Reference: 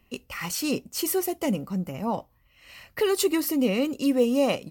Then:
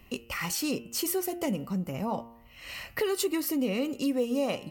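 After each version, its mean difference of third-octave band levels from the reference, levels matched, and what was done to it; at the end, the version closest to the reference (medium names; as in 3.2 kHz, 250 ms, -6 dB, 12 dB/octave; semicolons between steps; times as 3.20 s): 3.5 dB: de-hum 116.3 Hz, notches 27; compression 2:1, threshold -45 dBFS, peak gain reduction 15 dB; trim +8 dB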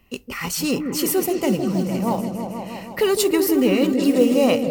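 5.5 dB: modulation noise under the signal 27 dB; delay with an opening low-pass 160 ms, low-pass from 400 Hz, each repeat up 1 oct, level -3 dB; trim +4.5 dB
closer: first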